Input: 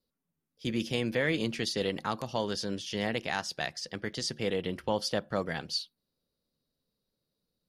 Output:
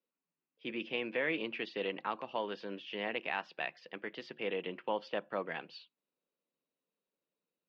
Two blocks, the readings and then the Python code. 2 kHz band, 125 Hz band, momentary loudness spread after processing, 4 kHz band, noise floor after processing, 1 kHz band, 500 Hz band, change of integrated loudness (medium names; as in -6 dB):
-3.0 dB, -17.5 dB, 10 LU, -9.5 dB, under -85 dBFS, -3.0 dB, -5.0 dB, -6.0 dB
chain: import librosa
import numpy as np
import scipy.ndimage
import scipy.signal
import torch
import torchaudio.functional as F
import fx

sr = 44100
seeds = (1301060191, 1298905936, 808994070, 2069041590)

y = fx.cabinet(x, sr, low_hz=210.0, low_slope=24, high_hz=3000.0, hz=(230.0, 1000.0, 2600.0), db=(-6, 4, 8))
y = y * librosa.db_to_amplitude(-5.0)